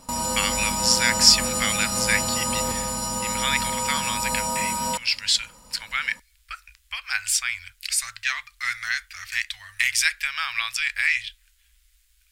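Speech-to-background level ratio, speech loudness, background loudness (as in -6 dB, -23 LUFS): 1.0 dB, -23.5 LUFS, -24.5 LUFS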